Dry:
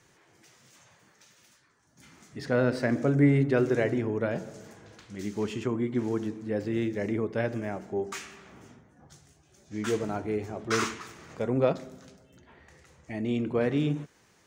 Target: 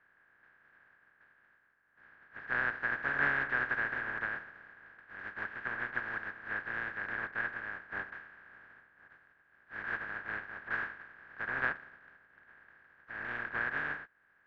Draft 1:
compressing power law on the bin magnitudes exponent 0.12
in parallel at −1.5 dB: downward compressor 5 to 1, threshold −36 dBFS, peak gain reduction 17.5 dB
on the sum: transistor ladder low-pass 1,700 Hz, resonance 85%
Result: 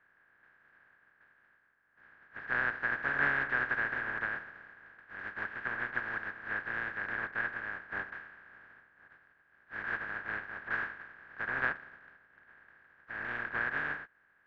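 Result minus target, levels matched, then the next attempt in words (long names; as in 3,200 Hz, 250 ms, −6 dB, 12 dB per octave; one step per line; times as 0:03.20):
downward compressor: peak gain reduction −8 dB
compressing power law on the bin magnitudes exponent 0.12
in parallel at −1.5 dB: downward compressor 5 to 1, threshold −46 dBFS, peak gain reduction 25.5 dB
on the sum: transistor ladder low-pass 1,700 Hz, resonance 85%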